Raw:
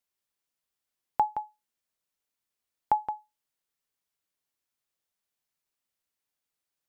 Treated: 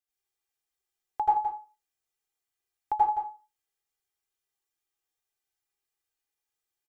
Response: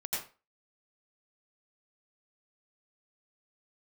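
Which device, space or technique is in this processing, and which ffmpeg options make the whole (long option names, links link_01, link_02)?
microphone above a desk: -filter_complex "[0:a]aecho=1:1:2.5:0.87[link_01];[1:a]atrim=start_sample=2205[link_02];[link_01][link_02]afir=irnorm=-1:irlink=0,volume=-6.5dB"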